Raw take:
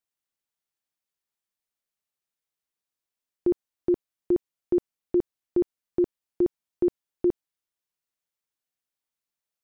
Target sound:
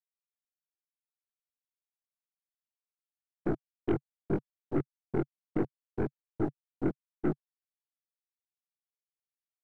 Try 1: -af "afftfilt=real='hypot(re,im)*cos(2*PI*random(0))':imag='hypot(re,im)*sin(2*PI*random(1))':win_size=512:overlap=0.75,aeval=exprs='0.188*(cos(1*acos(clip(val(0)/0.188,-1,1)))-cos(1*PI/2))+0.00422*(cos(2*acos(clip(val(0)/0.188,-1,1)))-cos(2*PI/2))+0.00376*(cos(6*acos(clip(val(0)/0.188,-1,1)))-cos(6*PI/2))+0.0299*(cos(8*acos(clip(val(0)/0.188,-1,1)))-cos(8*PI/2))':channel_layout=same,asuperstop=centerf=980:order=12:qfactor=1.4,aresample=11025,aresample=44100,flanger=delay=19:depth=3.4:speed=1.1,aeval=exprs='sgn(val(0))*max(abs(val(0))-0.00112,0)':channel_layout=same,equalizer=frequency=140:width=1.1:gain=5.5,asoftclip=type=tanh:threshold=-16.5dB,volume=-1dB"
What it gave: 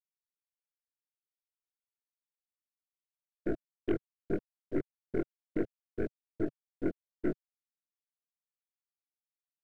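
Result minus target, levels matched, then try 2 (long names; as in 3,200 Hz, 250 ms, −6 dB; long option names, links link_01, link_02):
1,000 Hz band −6.0 dB; 125 Hz band −5.0 dB
-af "afftfilt=real='hypot(re,im)*cos(2*PI*random(0))':imag='hypot(re,im)*sin(2*PI*random(1))':win_size=512:overlap=0.75,aeval=exprs='0.188*(cos(1*acos(clip(val(0)/0.188,-1,1)))-cos(1*PI/2))+0.00422*(cos(2*acos(clip(val(0)/0.188,-1,1)))-cos(2*PI/2))+0.00376*(cos(6*acos(clip(val(0)/0.188,-1,1)))-cos(6*PI/2))+0.0299*(cos(8*acos(clip(val(0)/0.188,-1,1)))-cos(8*PI/2))':channel_layout=same,aresample=11025,aresample=44100,flanger=delay=19:depth=3.4:speed=1.1,aeval=exprs='sgn(val(0))*max(abs(val(0))-0.00112,0)':channel_layout=same,equalizer=frequency=140:width=1.1:gain=15,asoftclip=type=tanh:threshold=-16.5dB,volume=-1dB"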